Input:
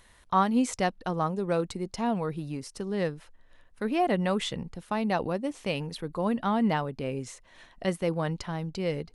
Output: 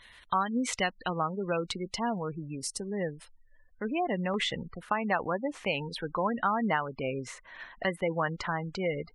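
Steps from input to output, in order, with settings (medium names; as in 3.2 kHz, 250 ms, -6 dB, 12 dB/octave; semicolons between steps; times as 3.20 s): spectral gate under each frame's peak -25 dB strong; peaking EQ 2.8 kHz +15 dB 2.1 oct, from 2.18 s 8.4 kHz, from 4.34 s 1.5 kHz; compression 3:1, threshold -22 dBFS, peak gain reduction 7 dB; trim -3.5 dB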